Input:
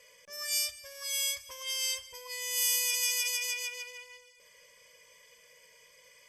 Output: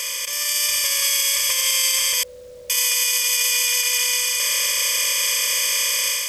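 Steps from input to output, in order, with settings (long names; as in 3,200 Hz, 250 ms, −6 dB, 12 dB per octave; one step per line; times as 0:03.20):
compressor on every frequency bin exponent 0.2
0:02.23–0:02.70: Butterworth low-pass 590 Hz 48 dB per octave
brickwall limiter −18 dBFS, peak gain reduction 7.5 dB
automatic gain control gain up to 6 dB
bit reduction 9 bits
level +3 dB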